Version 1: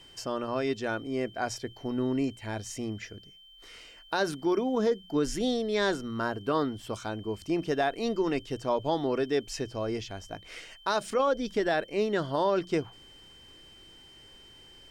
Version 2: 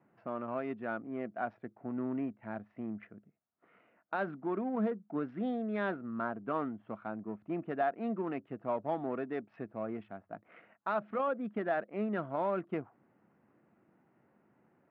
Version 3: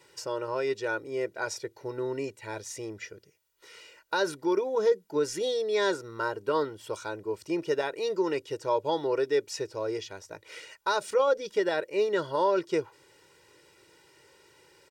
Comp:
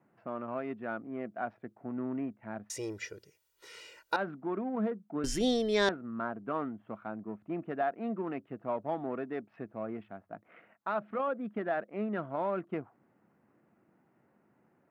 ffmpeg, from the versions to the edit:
-filter_complex "[1:a]asplit=3[s0][s1][s2];[s0]atrim=end=2.702[s3];[2:a]atrim=start=2.698:end=4.162[s4];[s1]atrim=start=4.158:end=5.242[s5];[0:a]atrim=start=5.238:end=5.892[s6];[s2]atrim=start=5.888[s7];[s3][s4]acrossfade=d=0.004:c1=hsin:c2=hsin[s8];[s8][s5]acrossfade=d=0.004:c1=hsin:c2=hsin[s9];[s9][s6]acrossfade=d=0.004:c1=hsin:c2=hsin[s10];[s10][s7]acrossfade=d=0.004:c1=hsin:c2=hsin"

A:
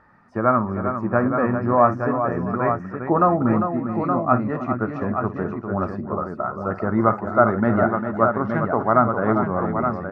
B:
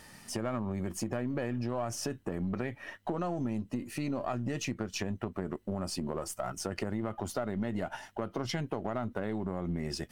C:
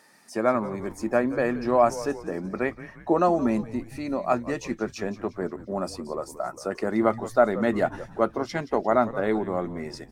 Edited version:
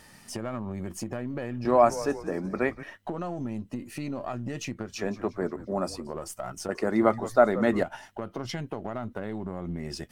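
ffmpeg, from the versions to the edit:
-filter_complex "[2:a]asplit=3[s0][s1][s2];[1:a]asplit=4[s3][s4][s5][s6];[s3]atrim=end=1.652[s7];[s0]atrim=start=1.648:end=2.832[s8];[s4]atrim=start=2.828:end=5.07[s9];[s1]atrim=start=4.83:end=6.17[s10];[s5]atrim=start=5.93:end=6.692[s11];[s2]atrim=start=6.688:end=7.832[s12];[s6]atrim=start=7.828[s13];[s7][s8]acrossfade=d=0.004:c1=hsin:c2=hsin[s14];[s14][s9]acrossfade=d=0.004:c1=hsin:c2=hsin[s15];[s15][s10]acrossfade=d=0.24:c1=tri:c2=tri[s16];[s16][s11]acrossfade=d=0.24:c1=tri:c2=tri[s17];[s17][s12]acrossfade=d=0.004:c1=hsin:c2=hsin[s18];[s18][s13]acrossfade=d=0.004:c1=hsin:c2=hsin"

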